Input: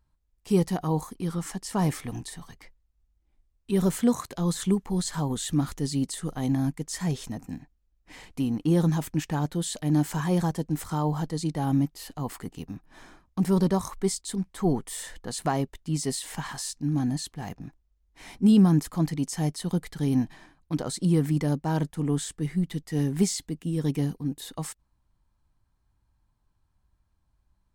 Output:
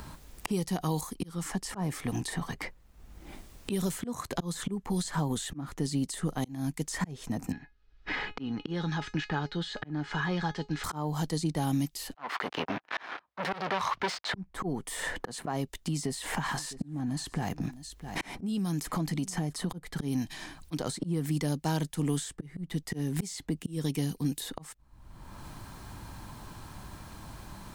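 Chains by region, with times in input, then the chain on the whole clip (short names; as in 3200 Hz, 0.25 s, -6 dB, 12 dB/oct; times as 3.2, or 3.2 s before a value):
7.52–10.84 LPF 4400 Hz 24 dB/oct + bell 1500 Hz +10 dB 0.69 oct + resonator 420 Hz, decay 0.15 s, mix 80%
12.14–14.34 sample leveller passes 5 + HPF 770 Hz + air absorption 280 m
15.74–19.7 compressor 3:1, threshold -37 dBFS + echo 0.658 s -23 dB
whole clip: auto swell 0.654 s; three-band squash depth 100%; gain +4 dB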